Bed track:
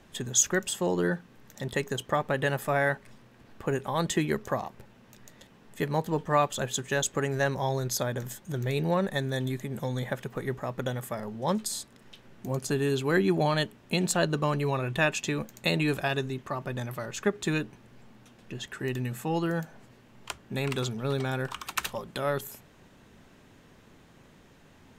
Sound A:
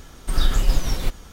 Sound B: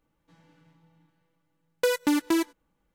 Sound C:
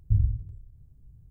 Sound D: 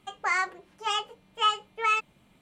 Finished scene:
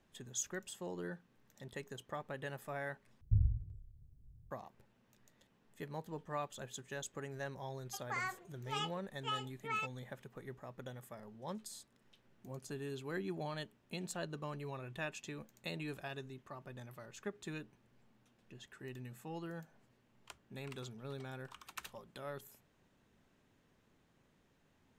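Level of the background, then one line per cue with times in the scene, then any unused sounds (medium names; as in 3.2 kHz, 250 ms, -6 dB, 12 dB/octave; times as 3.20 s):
bed track -16.5 dB
3.21 s: replace with C -8 dB
7.86 s: add D -11.5 dB + peak limiter -18 dBFS
not used: A, B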